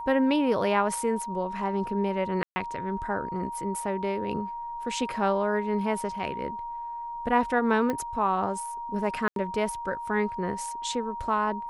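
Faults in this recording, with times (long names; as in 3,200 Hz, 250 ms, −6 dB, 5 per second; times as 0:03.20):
whistle 940 Hz −33 dBFS
0:02.43–0:02.56: drop-out 130 ms
0:07.90: click −16 dBFS
0:09.28–0:09.36: drop-out 82 ms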